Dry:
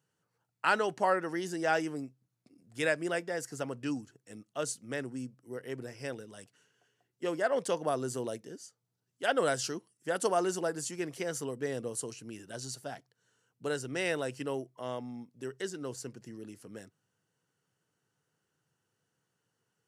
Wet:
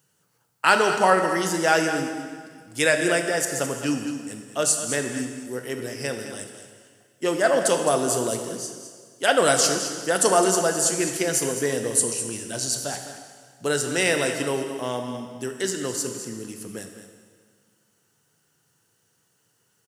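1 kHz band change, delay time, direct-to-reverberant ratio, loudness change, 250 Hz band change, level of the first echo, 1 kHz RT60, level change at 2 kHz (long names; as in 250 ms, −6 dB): +10.5 dB, 211 ms, 4.0 dB, +11.5 dB, +10.0 dB, −11.5 dB, 1.8 s, +11.0 dB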